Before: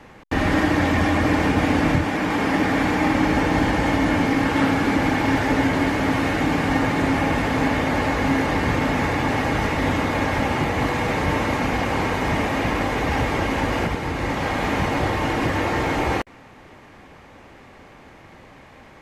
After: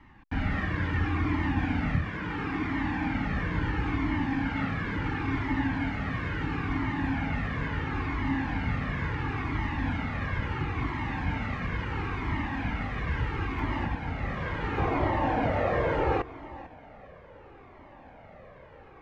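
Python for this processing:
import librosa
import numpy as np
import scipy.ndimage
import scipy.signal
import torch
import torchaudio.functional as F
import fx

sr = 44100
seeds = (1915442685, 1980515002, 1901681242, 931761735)

y = scipy.signal.sosfilt(scipy.signal.bessel(2, 2000.0, 'lowpass', norm='mag', fs=sr, output='sos'), x)
y = fx.peak_eq(y, sr, hz=570.0, db=fx.steps((0.0, -15.0), (13.59, -7.5), (14.78, 6.0)), octaves=1.0)
y = fx.echo_feedback(y, sr, ms=447, feedback_pct=26, wet_db=-17.0)
y = fx.comb_cascade(y, sr, direction='falling', hz=0.73)
y = y * librosa.db_to_amplitude(-1.5)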